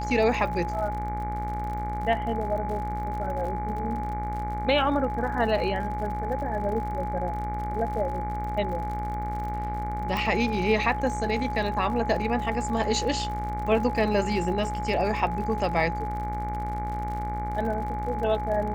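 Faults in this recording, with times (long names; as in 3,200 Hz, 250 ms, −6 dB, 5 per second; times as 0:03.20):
mains buzz 60 Hz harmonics 39 −33 dBFS
surface crackle 65 per second −35 dBFS
whistle 840 Hz −31 dBFS
0:10.17: click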